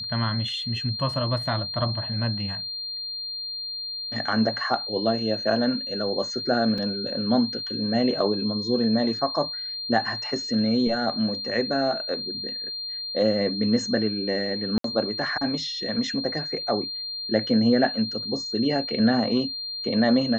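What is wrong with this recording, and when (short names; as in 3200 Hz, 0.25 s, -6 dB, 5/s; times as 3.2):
tone 4200 Hz -30 dBFS
6.78 gap 3.8 ms
14.78–14.84 gap 63 ms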